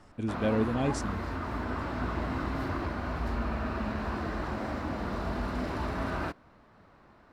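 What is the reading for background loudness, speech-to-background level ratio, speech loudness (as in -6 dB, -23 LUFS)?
-34.0 LUFS, 3.0 dB, -31.0 LUFS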